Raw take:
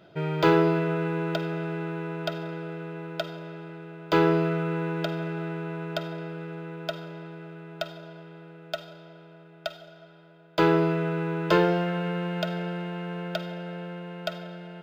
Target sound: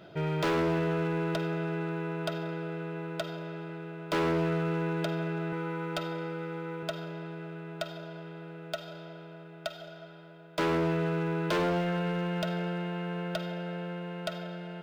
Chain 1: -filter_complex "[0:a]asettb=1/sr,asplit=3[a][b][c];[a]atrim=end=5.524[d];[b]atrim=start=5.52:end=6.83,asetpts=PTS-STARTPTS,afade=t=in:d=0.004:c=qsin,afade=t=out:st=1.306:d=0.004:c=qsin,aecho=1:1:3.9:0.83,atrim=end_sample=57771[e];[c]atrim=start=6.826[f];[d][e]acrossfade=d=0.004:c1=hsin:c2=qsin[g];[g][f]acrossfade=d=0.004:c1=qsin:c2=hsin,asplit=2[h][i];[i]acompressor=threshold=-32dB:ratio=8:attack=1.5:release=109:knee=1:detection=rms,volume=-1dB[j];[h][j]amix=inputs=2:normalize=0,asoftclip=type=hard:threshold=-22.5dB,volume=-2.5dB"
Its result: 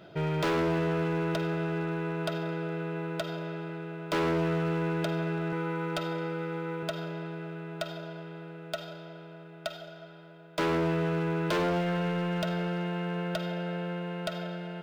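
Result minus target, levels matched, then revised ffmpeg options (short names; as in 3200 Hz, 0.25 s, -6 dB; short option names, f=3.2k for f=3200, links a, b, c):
compressor: peak gain reduction -8.5 dB
-filter_complex "[0:a]asettb=1/sr,asplit=3[a][b][c];[a]atrim=end=5.524[d];[b]atrim=start=5.52:end=6.83,asetpts=PTS-STARTPTS,afade=t=in:d=0.004:c=qsin,afade=t=out:st=1.306:d=0.004:c=qsin,aecho=1:1:3.9:0.83,atrim=end_sample=57771[e];[c]atrim=start=6.826[f];[d][e]acrossfade=d=0.004:c1=hsin:c2=qsin[g];[g][f]acrossfade=d=0.004:c1=qsin:c2=hsin,asplit=2[h][i];[i]acompressor=threshold=-41.5dB:ratio=8:attack=1.5:release=109:knee=1:detection=rms,volume=-1dB[j];[h][j]amix=inputs=2:normalize=0,asoftclip=type=hard:threshold=-22.5dB,volume=-2.5dB"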